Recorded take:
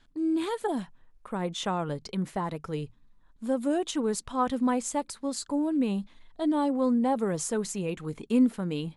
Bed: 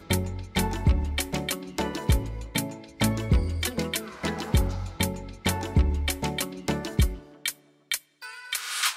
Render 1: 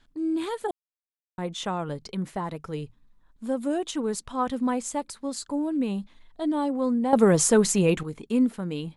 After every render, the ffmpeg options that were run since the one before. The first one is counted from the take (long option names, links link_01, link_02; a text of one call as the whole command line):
ffmpeg -i in.wav -filter_complex "[0:a]asplit=5[link_01][link_02][link_03][link_04][link_05];[link_01]atrim=end=0.71,asetpts=PTS-STARTPTS,afade=type=out:start_time=0.706:duration=0.004:curve=hsin[link_06];[link_02]atrim=start=0.71:end=1.38,asetpts=PTS-STARTPTS,volume=0[link_07];[link_03]atrim=start=1.38:end=7.132,asetpts=PTS-STARTPTS,afade=type=in:duration=0.004:curve=hsin[link_08];[link_04]atrim=start=7.128:end=8.032,asetpts=PTS-STARTPTS,volume=10.5dB[link_09];[link_05]atrim=start=8.028[link_10];[link_06][link_07][link_08]concat=n=3:v=0:a=1[link_11];[link_11][link_09]acrossfade=duration=0.004:curve1=hsin:curve2=hsin[link_12];[link_12][link_10]acrossfade=duration=0.004:curve1=hsin:curve2=hsin" out.wav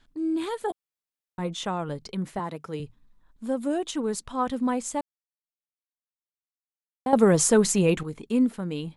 ffmpeg -i in.wav -filter_complex "[0:a]asettb=1/sr,asplit=3[link_01][link_02][link_03];[link_01]atrim=end=0.664[link_04];[link_02]atrim=start=0.66:end=1.59,asetpts=PTS-STARTPTS,afade=type=in:duration=0.004:curve=qsin,afade=type=out:start_time=0.926:duration=0.004:curve=qsin,asplit=2[link_05][link_06];[link_06]adelay=12,volume=-7dB[link_07];[link_05][link_07]amix=inputs=2:normalize=0,atrim=end_sample=41013[link_08];[link_03]atrim=start=1.586[link_09];[link_04][link_08]acrossfade=duration=0.004:curve1=hsin:curve2=qsin[link_10];[link_10][link_09]acrossfade=duration=0.004:curve1=qsin:curve2=hsin,asettb=1/sr,asplit=3[link_11][link_12][link_13];[link_11]atrim=end=2.394[link_14];[link_12]atrim=start=2.39:end=2.8,asetpts=PTS-STARTPTS,afade=type=in:duration=0.004:curve=qsin,afade=type=out:start_time=0.406:duration=0.004:curve=qsin,highpass=150[link_15];[link_13]atrim=start=2.796[link_16];[link_14][link_15]acrossfade=duration=0.004:curve1=hsin:curve2=qsin[link_17];[link_17][link_16]acrossfade=duration=0.004:curve1=qsin:curve2=hsin,asplit=3[link_18][link_19][link_20];[link_18]atrim=end=5.01,asetpts=PTS-STARTPTS,afade=type=out:start_time=5.006:duration=0.004:curve=hsin[link_21];[link_19]atrim=start=5.01:end=7.06,asetpts=PTS-STARTPTS,volume=0[link_22];[link_20]atrim=start=7.06,asetpts=PTS-STARTPTS,afade=type=in:duration=0.004:curve=hsin[link_23];[link_21][link_22][link_23]concat=n=3:v=0:a=1" out.wav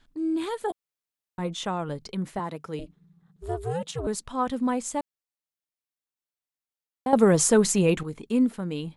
ffmpeg -i in.wav -filter_complex "[0:a]asettb=1/sr,asplit=3[link_01][link_02][link_03];[link_01]atrim=end=2.794[link_04];[link_02]atrim=start=2.79:end=4.07,asetpts=PTS-STARTPTS,afade=type=in:duration=0.004:curve=qsin,afade=type=out:start_time=1.276:duration=0.004:curve=qsin,aeval=exprs='val(0)*sin(2*PI*170*n/s)':channel_layout=same[link_05];[link_03]atrim=start=4.066[link_06];[link_04][link_05]acrossfade=duration=0.004:curve1=hsin:curve2=qsin[link_07];[link_07][link_06]acrossfade=duration=0.004:curve1=qsin:curve2=hsin" out.wav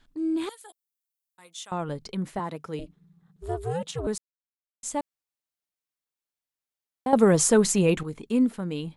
ffmpeg -i in.wav -filter_complex "[0:a]asettb=1/sr,asplit=3[link_01][link_02][link_03];[link_01]atrim=end=0.494[link_04];[link_02]atrim=start=0.49:end=1.72,asetpts=PTS-STARTPTS,afade=type=in:duration=0.004:curve=qsin,afade=type=out:start_time=1.226:duration=0.004:curve=qsin,aderivative[link_05];[link_03]atrim=start=1.716[link_06];[link_04][link_05]acrossfade=duration=0.004:curve1=hsin:curve2=qsin[link_07];[link_07][link_06]acrossfade=duration=0.004:curve1=qsin:curve2=hsin,asplit=3[link_08][link_09][link_10];[link_08]atrim=end=4.18,asetpts=PTS-STARTPTS,afade=type=out:start_time=4.176:duration=0.004:curve=hsin[link_11];[link_09]atrim=start=4.18:end=4.83,asetpts=PTS-STARTPTS,volume=0[link_12];[link_10]atrim=start=4.83,asetpts=PTS-STARTPTS,afade=type=in:duration=0.004:curve=hsin[link_13];[link_11][link_12][link_13]concat=n=3:v=0:a=1" out.wav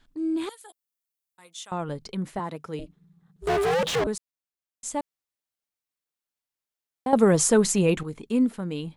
ffmpeg -i in.wav -filter_complex "[0:a]asettb=1/sr,asplit=3[link_01][link_02][link_03];[link_01]atrim=end=3.474[link_04];[link_02]atrim=start=3.47:end=4.04,asetpts=PTS-STARTPTS,afade=type=in:duration=0.004:curve=qsin,afade=type=out:start_time=0.566:duration=0.004:curve=qsin,asplit=2[link_05][link_06];[link_06]highpass=frequency=720:poles=1,volume=41dB,asoftclip=type=tanh:threshold=-16.5dB[link_07];[link_05][link_07]amix=inputs=2:normalize=0,lowpass=frequency=2500:poles=1,volume=-6dB[link_08];[link_03]atrim=start=4.036[link_09];[link_04][link_08]acrossfade=duration=0.004:curve1=hsin:curve2=qsin[link_10];[link_10][link_09]acrossfade=duration=0.004:curve1=qsin:curve2=hsin" out.wav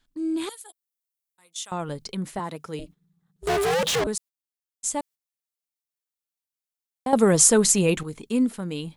ffmpeg -i in.wav -af "agate=range=-9dB:threshold=-46dB:ratio=16:detection=peak,highshelf=frequency=3800:gain=9" out.wav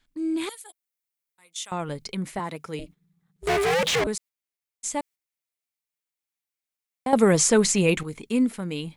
ffmpeg -i in.wav -filter_complex "[0:a]acrossover=split=7400[link_01][link_02];[link_02]acompressor=threshold=-36dB:ratio=4:attack=1:release=60[link_03];[link_01][link_03]amix=inputs=2:normalize=0,equalizer=frequency=2200:width_type=o:width=0.46:gain=6.5" out.wav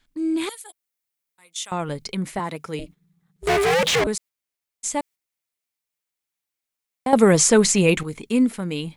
ffmpeg -i in.wav -af "volume=3.5dB" out.wav